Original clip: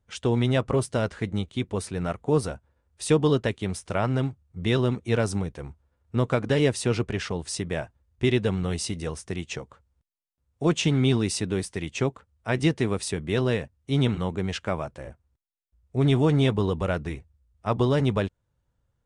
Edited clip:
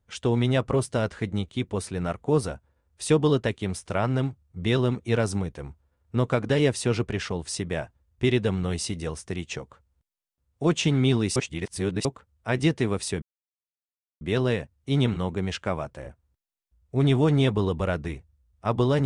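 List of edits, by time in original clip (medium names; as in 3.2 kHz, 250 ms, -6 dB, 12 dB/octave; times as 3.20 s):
11.36–12.05 s: reverse
13.22 s: insert silence 0.99 s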